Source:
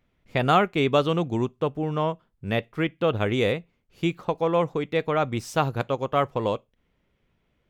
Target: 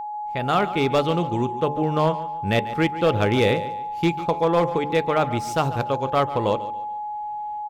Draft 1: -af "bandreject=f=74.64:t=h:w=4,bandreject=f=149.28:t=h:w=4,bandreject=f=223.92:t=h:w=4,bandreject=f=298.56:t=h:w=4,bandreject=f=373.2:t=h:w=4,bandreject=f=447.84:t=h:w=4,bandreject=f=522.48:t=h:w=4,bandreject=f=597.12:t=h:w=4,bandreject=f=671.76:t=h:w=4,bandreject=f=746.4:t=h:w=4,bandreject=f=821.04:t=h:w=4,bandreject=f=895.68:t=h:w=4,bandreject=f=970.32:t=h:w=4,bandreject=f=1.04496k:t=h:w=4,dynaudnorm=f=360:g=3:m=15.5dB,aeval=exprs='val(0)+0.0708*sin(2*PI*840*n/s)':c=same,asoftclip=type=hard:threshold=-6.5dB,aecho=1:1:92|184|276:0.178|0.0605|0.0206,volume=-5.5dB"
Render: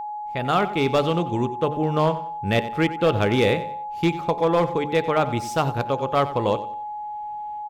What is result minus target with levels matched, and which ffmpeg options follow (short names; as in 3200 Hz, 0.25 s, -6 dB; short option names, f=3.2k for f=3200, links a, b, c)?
echo 51 ms early
-af "bandreject=f=74.64:t=h:w=4,bandreject=f=149.28:t=h:w=4,bandreject=f=223.92:t=h:w=4,bandreject=f=298.56:t=h:w=4,bandreject=f=373.2:t=h:w=4,bandreject=f=447.84:t=h:w=4,bandreject=f=522.48:t=h:w=4,bandreject=f=597.12:t=h:w=4,bandreject=f=671.76:t=h:w=4,bandreject=f=746.4:t=h:w=4,bandreject=f=821.04:t=h:w=4,bandreject=f=895.68:t=h:w=4,bandreject=f=970.32:t=h:w=4,bandreject=f=1.04496k:t=h:w=4,dynaudnorm=f=360:g=3:m=15.5dB,aeval=exprs='val(0)+0.0708*sin(2*PI*840*n/s)':c=same,asoftclip=type=hard:threshold=-6.5dB,aecho=1:1:143|286|429:0.178|0.0605|0.0206,volume=-5.5dB"